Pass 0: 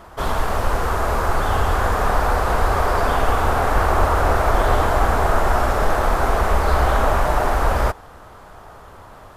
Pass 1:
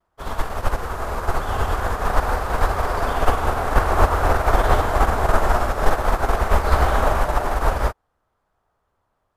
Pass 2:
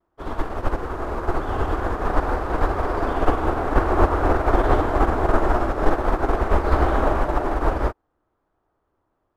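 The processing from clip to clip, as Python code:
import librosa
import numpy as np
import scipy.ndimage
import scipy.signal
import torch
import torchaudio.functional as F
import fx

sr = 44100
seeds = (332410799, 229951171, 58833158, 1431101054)

y1 = fx.vibrato(x, sr, rate_hz=0.5, depth_cents=25.0)
y1 = fx.upward_expand(y1, sr, threshold_db=-35.0, expansion=2.5)
y1 = F.gain(torch.from_numpy(y1), 4.0).numpy()
y2 = fx.lowpass(y1, sr, hz=2200.0, slope=6)
y2 = fx.peak_eq(y2, sr, hz=320.0, db=11.5, octaves=0.62)
y2 = F.gain(torch.from_numpy(y2), -2.0).numpy()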